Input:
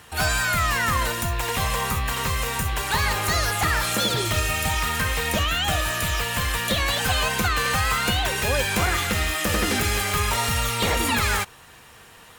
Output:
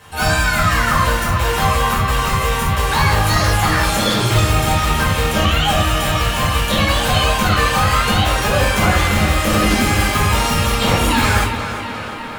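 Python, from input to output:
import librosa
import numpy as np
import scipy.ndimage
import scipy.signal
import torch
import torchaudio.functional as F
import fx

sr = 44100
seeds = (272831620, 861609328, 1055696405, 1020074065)

y = fx.high_shelf(x, sr, hz=8600.0, db=-3.5)
y = fx.echo_tape(y, sr, ms=354, feedback_pct=81, wet_db=-8.5, lp_hz=5100.0, drive_db=10.0, wow_cents=37)
y = fx.room_shoebox(y, sr, seeds[0], volume_m3=420.0, walls='furnished', distance_m=5.3)
y = y * 10.0 ** (-2.0 / 20.0)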